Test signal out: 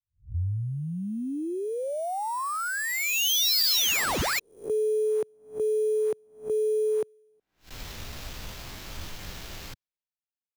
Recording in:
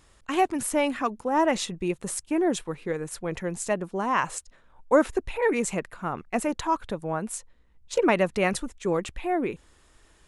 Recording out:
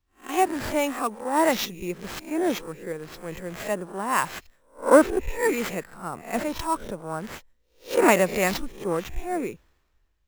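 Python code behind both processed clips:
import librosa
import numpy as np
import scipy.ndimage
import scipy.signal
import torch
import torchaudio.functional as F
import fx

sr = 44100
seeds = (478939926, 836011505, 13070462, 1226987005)

y = fx.spec_swells(x, sr, rise_s=0.44)
y = fx.sample_hold(y, sr, seeds[0], rate_hz=9400.0, jitter_pct=0)
y = fx.band_widen(y, sr, depth_pct=70)
y = y * librosa.db_to_amplitude(-1.5)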